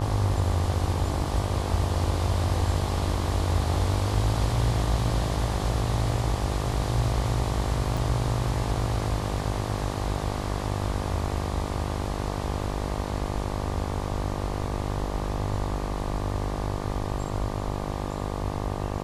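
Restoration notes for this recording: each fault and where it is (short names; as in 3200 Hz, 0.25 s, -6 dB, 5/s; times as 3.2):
buzz 50 Hz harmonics 24 -31 dBFS
7.97 gap 3.9 ms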